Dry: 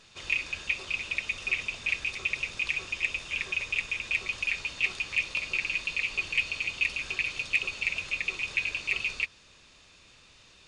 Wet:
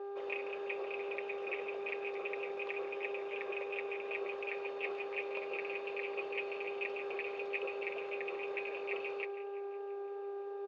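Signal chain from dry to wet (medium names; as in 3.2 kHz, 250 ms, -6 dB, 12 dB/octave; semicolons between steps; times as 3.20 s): mains buzz 400 Hz, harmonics 4, -46 dBFS -7 dB/octave; ladder band-pass 560 Hz, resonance 55%; on a send: delay 142 ms -15.5 dB; on the sum: modulated delay 169 ms, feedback 68%, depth 132 cents, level -18 dB; trim +13 dB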